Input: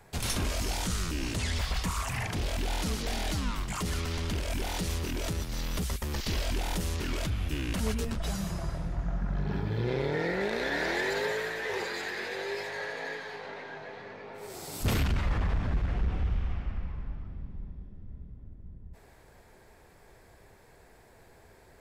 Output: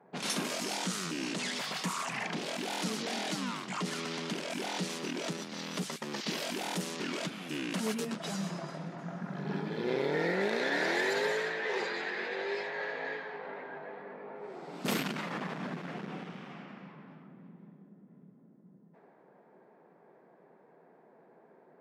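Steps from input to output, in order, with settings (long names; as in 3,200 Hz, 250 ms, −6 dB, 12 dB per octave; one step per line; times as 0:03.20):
low-pass that shuts in the quiet parts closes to 930 Hz, open at −25.5 dBFS
linear-phase brick-wall high-pass 150 Hz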